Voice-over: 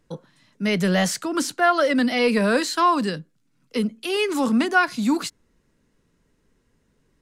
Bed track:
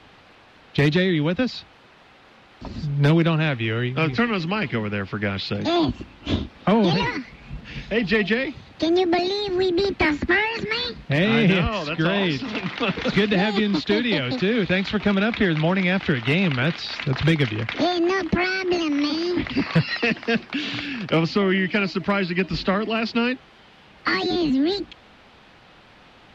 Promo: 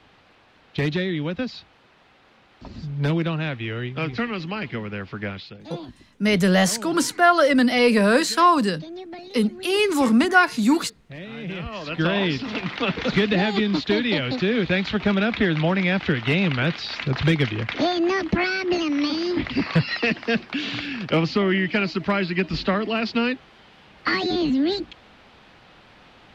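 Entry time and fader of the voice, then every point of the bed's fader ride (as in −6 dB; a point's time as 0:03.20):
5.60 s, +2.5 dB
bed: 0:05.30 −5 dB
0:05.58 −17.5 dB
0:11.36 −17.5 dB
0:12.01 −0.5 dB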